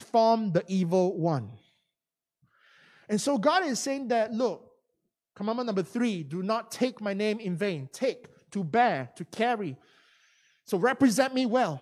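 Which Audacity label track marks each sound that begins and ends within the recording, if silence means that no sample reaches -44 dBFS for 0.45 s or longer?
3.090000	4.610000	sound
5.360000	9.750000	sound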